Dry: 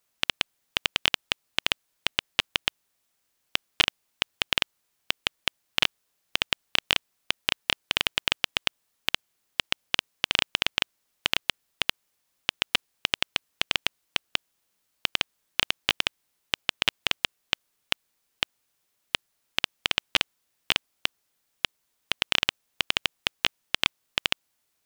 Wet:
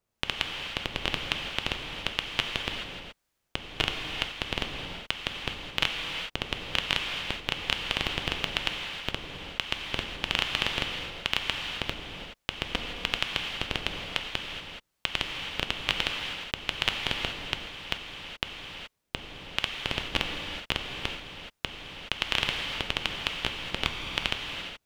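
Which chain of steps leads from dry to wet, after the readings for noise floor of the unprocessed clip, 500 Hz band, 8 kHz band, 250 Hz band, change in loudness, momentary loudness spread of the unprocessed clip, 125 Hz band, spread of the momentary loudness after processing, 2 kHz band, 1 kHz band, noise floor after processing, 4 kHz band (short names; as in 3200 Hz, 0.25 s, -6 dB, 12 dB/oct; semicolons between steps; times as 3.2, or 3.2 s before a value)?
-76 dBFS, +2.0 dB, -5.5 dB, +3.5 dB, -3.0 dB, 7 LU, +6.5 dB, 9 LU, -2.5 dB, 0.0 dB, -79 dBFS, -3.5 dB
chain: tilt -2 dB/oct; harmonic tremolo 1.1 Hz, depth 50%, crossover 770 Hz; non-linear reverb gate 0.45 s flat, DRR 1.5 dB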